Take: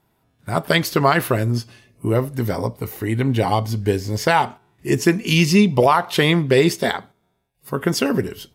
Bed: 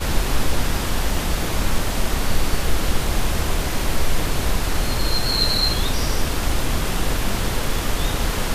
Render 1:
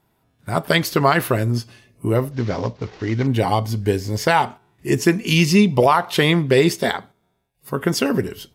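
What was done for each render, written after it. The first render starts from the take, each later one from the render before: 2.31–3.27 s: CVSD coder 32 kbps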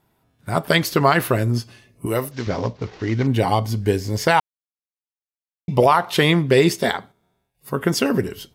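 2.06–2.47 s: tilt EQ +2.5 dB/octave; 4.40–5.68 s: mute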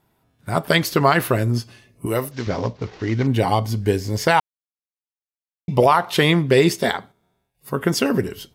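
no audible change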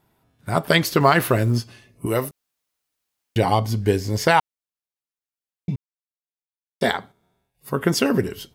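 1.00–1.60 s: companding laws mixed up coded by mu; 2.31–3.36 s: room tone; 5.76–6.81 s: mute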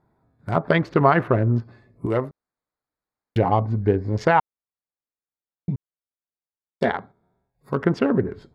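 local Wiener filter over 15 samples; low-pass that closes with the level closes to 1.7 kHz, closed at -16.5 dBFS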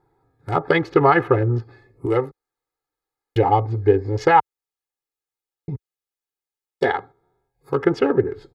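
peaking EQ 64 Hz -8.5 dB 0.98 oct; comb 2.4 ms, depth 95%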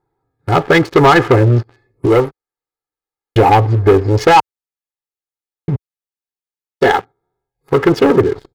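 waveshaping leveller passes 3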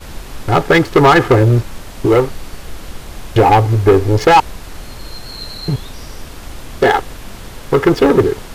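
add bed -9.5 dB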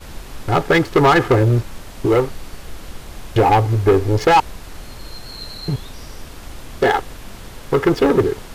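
trim -4 dB

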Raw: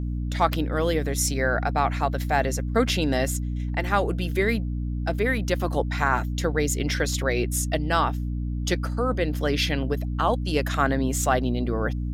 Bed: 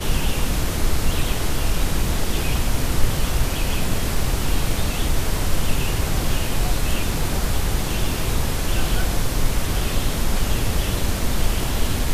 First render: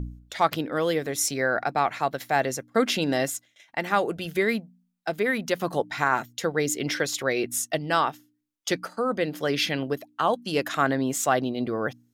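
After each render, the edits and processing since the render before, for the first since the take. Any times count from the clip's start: de-hum 60 Hz, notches 5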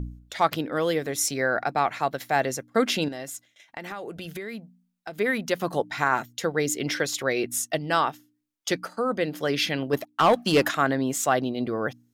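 3.08–5.17 s: compression, threshold -32 dBFS; 9.93–10.71 s: waveshaping leveller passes 2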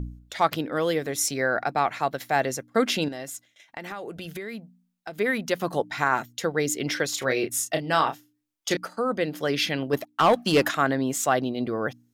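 7.13–8.77 s: doubling 31 ms -7 dB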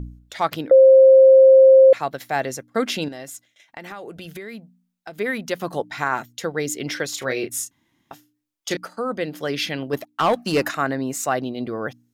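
0.71–1.93 s: bleep 530 Hz -6.5 dBFS; 7.71–8.11 s: room tone; 10.38–11.39 s: band-stop 3.3 kHz, Q 5.6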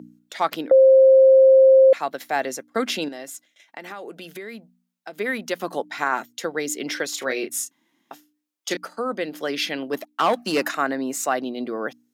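high-pass 210 Hz 24 dB/octave; dynamic bell 420 Hz, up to -3 dB, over -25 dBFS, Q 1.3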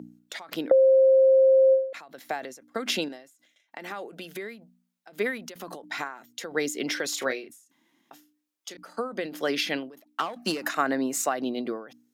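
compression, threshold -16 dBFS, peak gain reduction 5.5 dB; endings held to a fixed fall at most 110 dB/s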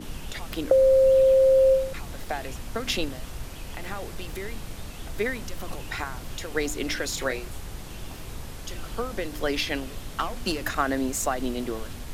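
add bed -16 dB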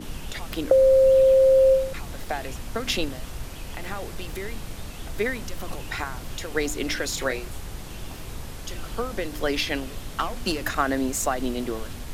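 trim +1.5 dB

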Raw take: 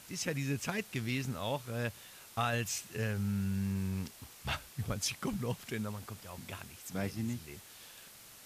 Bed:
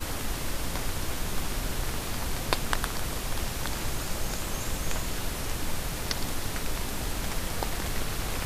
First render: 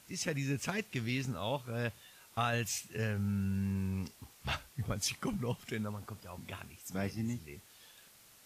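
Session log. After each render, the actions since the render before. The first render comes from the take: noise print and reduce 6 dB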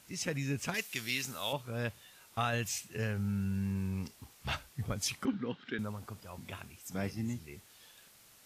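0.74–1.53 s: tilt EQ +3.5 dB/octave; 5.25–5.79 s: cabinet simulation 210–3900 Hz, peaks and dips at 270 Hz +9 dB, 650 Hz -9 dB, 1 kHz -5 dB, 1.5 kHz +10 dB, 2.4 kHz -4 dB, 3.7 kHz +5 dB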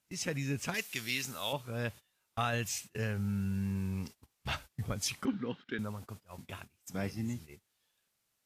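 gate -46 dBFS, range -20 dB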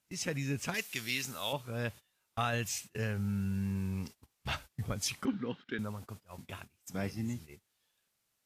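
no audible change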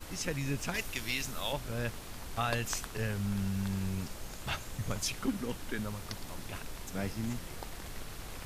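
add bed -12.5 dB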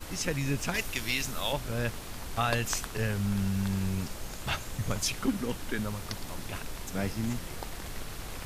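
trim +4 dB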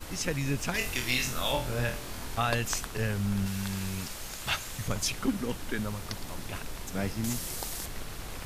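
0.78–2.36 s: flutter echo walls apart 4.1 m, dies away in 0.34 s; 3.46–4.88 s: tilt shelf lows -4.5 dB; 7.24–7.86 s: tone controls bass -1 dB, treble +11 dB

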